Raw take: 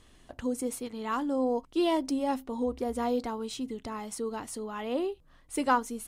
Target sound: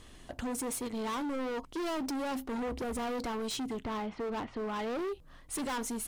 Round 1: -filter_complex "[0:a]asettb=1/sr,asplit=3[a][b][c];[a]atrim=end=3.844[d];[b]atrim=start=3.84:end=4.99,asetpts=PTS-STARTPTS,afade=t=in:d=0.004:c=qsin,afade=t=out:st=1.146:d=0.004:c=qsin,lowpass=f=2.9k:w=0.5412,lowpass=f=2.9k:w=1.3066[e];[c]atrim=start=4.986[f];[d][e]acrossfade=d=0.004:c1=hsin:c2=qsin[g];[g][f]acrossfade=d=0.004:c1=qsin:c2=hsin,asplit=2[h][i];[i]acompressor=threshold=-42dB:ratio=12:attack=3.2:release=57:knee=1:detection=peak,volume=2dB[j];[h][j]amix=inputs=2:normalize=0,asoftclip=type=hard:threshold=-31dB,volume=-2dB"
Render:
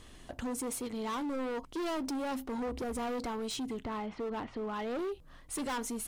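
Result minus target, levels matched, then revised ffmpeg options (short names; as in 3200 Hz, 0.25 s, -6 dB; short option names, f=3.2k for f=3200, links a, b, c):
compressor: peak gain reduction +10 dB
-filter_complex "[0:a]asettb=1/sr,asplit=3[a][b][c];[a]atrim=end=3.844[d];[b]atrim=start=3.84:end=4.99,asetpts=PTS-STARTPTS,afade=t=in:d=0.004:c=qsin,afade=t=out:st=1.146:d=0.004:c=qsin,lowpass=f=2.9k:w=0.5412,lowpass=f=2.9k:w=1.3066[e];[c]atrim=start=4.986[f];[d][e]acrossfade=d=0.004:c1=hsin:c2=qsin[g];[g][f]acrossfade=d=0.004:c1=qsin:c2=hsin,asplit=2[h][i];[i]acompressor=threshold=-31dB:ratio=12:attack=3.2:release=57:knee=1:detection=peak,volume=2dB[j];[h][j]amix=inputs=2:normalize=0,asoftclip=type=hard:threshold=-31dB,volume=-2dB"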